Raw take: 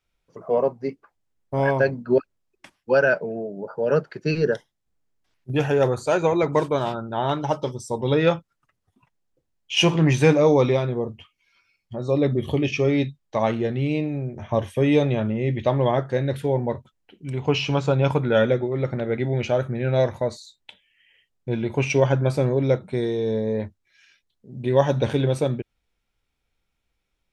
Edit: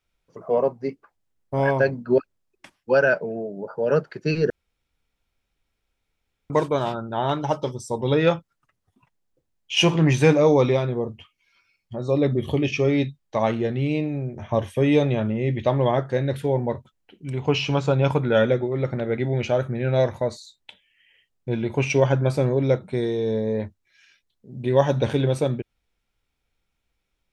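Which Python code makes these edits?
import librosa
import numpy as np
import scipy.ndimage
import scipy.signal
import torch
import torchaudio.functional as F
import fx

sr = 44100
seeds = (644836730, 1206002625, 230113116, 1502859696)

y = fx.edit(x, sr, fx.room_tone_fill(start_s=4.5, length_s=2.0), tone=tone)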